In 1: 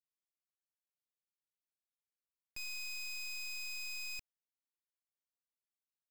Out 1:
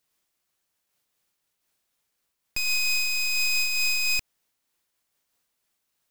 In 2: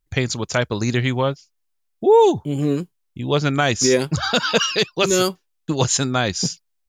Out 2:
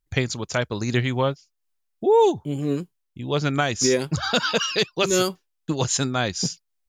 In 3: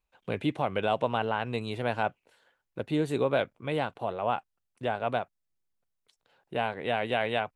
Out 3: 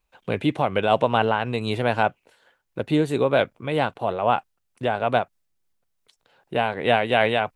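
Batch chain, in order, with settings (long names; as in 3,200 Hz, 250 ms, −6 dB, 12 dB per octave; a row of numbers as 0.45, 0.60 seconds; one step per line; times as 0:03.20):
amplitude modulation by smooth noise, depth 55%
loudness normalisation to −23 LKFS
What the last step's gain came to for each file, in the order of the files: +21.5, −0.5, +10.5 decibels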